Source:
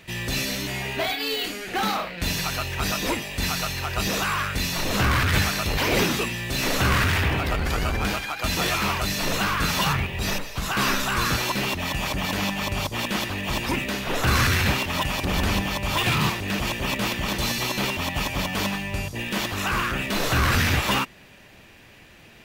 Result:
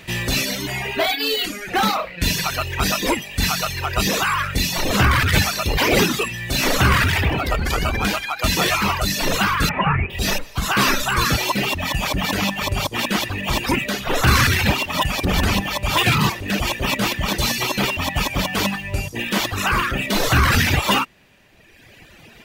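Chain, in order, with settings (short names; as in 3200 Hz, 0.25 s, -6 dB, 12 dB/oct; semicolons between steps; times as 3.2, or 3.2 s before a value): 9.69–10.1 steep low-pass 2600 Hz 48 dB/oct; reverb removal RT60 1.5 s; gain +7 dB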